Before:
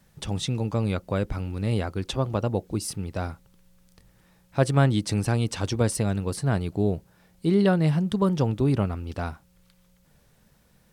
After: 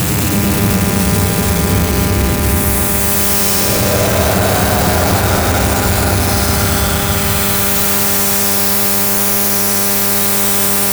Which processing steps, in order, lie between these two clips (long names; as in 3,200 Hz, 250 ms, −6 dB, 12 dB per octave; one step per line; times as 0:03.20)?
spike at every zero crossing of −16.5 dBFS
extreme stretch with random phases 20×, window 0.05 s, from 0:02.97
leveller curve on the samples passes 5
hum with harmonics 100 Hz, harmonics 26, −27 dBFS −3 dB per octave
on a send: feedback echo with a low-pass in the loop 255 ms, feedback 69%, low-pass 3,800 Hz, level −7 dB
on the sum: level +3.5 dB